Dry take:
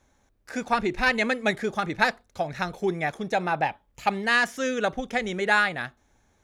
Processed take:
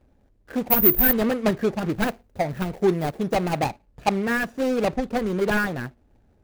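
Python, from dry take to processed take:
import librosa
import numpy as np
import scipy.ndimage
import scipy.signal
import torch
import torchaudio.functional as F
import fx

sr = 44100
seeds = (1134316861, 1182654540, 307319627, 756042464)

y = scipy.ndimage.median_filter(x, 41, mode='constant')
y = fx.resample_bad(y, sr, factor=3, down='none', up='zero_stuff', at=(0.7, 1.13))
y = fx.high_shelf(y, sr, hz=11000.0, db=9.5, at=(1.93, 3.66))
y = y * librosa.db_to_amplitude(7.0)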